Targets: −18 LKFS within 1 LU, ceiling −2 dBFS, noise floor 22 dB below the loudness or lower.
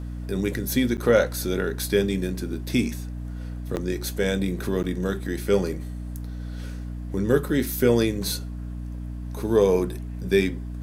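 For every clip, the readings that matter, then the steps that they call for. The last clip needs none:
number of dropouts 3; longest dropout 9.1 ms; mains hum 60 Hz; hum harmonics up to 300 Hz; level of the hum −30 dBFS; integrated loudness −25.5 LKFS; sample peak −6.5 dBFS; target loudness −18.0 LKFS
→ repair the gap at 0:00.97/0:03.76/0:04.83, 9.1 ms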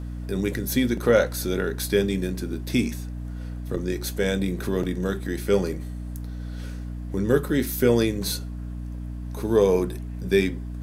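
number of dropouts 0; mains hum 60 Hz; hum harmonics up to 300 Hz; level of the hum −30 dBFS
→ hum removal 60 Hz, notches 5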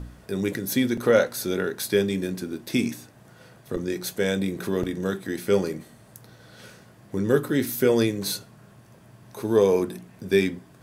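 mains hum none found; integrated loudness −25.0 LKFS; sample peak −6.5 dBFS; target loudness −18.0 LKFS
→ level +7 dB
brickwall limiter −2 dBFS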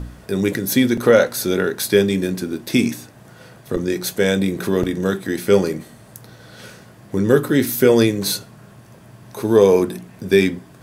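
integrated loudness −18.5 LKFS; sample peak −2.0 dBFS; background noise floor −45 dBFS

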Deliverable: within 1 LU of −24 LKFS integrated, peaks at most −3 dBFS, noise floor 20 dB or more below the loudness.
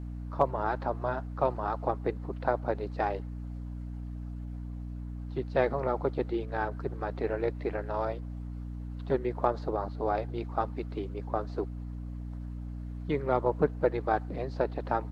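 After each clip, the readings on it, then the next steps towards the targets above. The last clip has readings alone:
mains hum 60 Hz; hum harmonics up to 300 Hz; level of the hum −36 dBFS; integrated loudness −33.0 LKFS; sample peak −11.5 dBFS; target loudness −24.0 LKFS
→ hum removal 60 Hz, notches 5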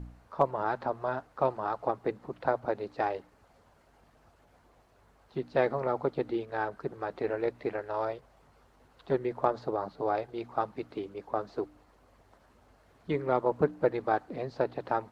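mains hum none found; integrated loudness −32.5 LKFS; sample peak −12.0 dBFS; target loudness −24.0 LKFS
→ level +8.5 dB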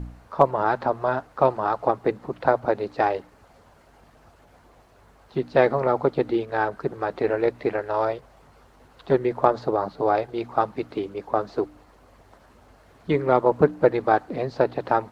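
integrated loudness −24.0 LKFS; sample peak −3.5 dBFS; background noise floor −55 dBFS

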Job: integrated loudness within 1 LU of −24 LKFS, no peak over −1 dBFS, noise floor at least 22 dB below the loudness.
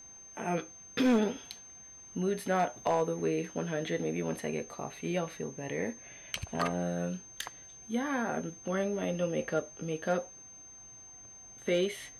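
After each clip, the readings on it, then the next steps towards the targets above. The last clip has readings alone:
share of clipped samples 0.2%; peaks flattened at −20.5 dBFS; interfering tone 6,300 Hz; level of the tone −49 dBFS; integrated loudness −33.5 LKFS; sample peak −20.5 dBFS; target loudness −24.0 LKFS
→ clipped peaks rebuilt −20.5 dBFS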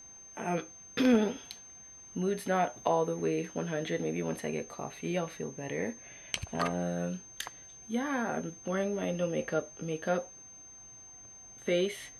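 share of clipped samples 0.0%; interfering tone 6,300 Hz; level of the tone −49 dBFS
→ notch filter 6,300 Hz, Q 30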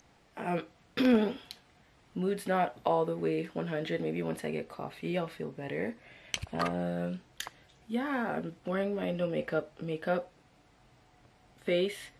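interfering tone none found; integrated loudness −33.5 LKFS; sample peak −11.5 dBFS; target loudness −24.0 LKFS
→ level +9.5 dB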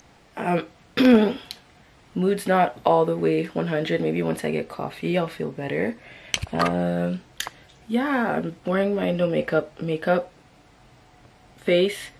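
integrated loudness −24.0 LKFS; sample peak −2.0 dBFS; background noise floor −54 dBFS

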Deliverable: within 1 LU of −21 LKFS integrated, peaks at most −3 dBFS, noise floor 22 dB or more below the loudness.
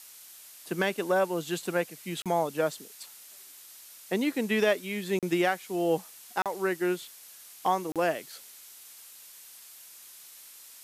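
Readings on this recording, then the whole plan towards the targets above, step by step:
number of dropouts 4; longest dropout 37 ms; background noise floor −50 dBFS; target noise floor −52 dBFS; integrated loudness −29.5 LKFS; sample peak −12.5 dBFS; target loudness −21.0 LKFS
→ repair the gap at 0:02.22/0:05.19/0:06.42/0:07.92, 37 ms
broadband denoise 6 dB, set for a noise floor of −50 dBFS
level +8.5 dB

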